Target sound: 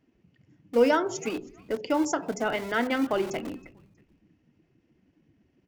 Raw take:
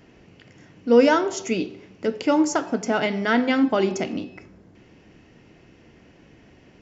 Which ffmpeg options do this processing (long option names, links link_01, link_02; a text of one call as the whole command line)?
ffmpeg -i in.wav -filter_complex "[0:a]afftdn=noise_reduction=16:noise_floor=-38,acrossover=split=210[link_01][link_02];[link_01]aeval=exprs='(mod(53.1*val(0)+1,2)-1)/53.1':channel_layout=same[link_03];[link_03][link_02]amix=inputs=2:normalize=0,atempo=1.2,asplit=3[link_04][link_05][link_06];[link_05]adelay=319,afreqshift=-120,volume=-24dB[link_07];[link_06]adelay=638,afreqshift=-240,volume=-33.9dB[link_08];[link_04][link_07][link_08]amix=inputs=3:normalize=0,volume=-4.5dB" out.wav